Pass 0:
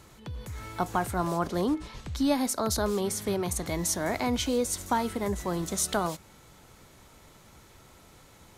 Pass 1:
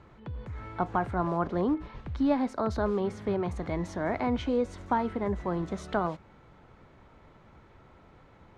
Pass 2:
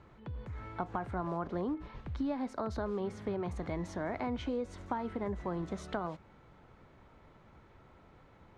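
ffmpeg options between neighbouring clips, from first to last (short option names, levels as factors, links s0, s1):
-af "lowpass=1900"
-af "acompressor=threshold=0.0398:ratio=5,volume=0.668"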